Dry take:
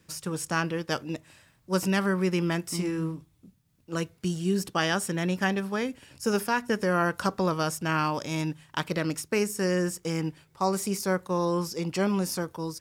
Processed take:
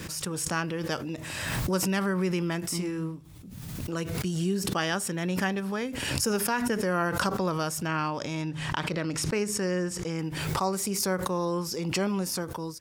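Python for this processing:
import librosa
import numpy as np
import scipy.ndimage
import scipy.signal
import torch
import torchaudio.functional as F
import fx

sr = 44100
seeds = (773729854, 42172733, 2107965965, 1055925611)

y = fx.air_absorb(x, sr, metres=53.0, at=(7.86, 10.19))
y = fx.pre_swell(y, sr, db_per_s=29.0)
y = y * librosa.db_to_amplitude(-2.5)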